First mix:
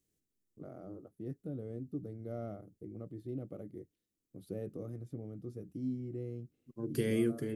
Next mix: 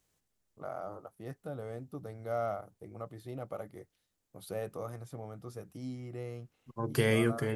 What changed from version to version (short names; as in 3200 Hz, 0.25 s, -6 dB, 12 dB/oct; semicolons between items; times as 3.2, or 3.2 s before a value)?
second voice: add tilt -2.5 dB/oct; master: remove EQ curve 110 Hz 0 dB, 320 Hz +6 dB, 910 Hz -21 dB, 1900 Hz -14 dB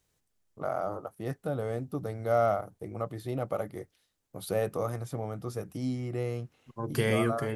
first voice +8.5 dB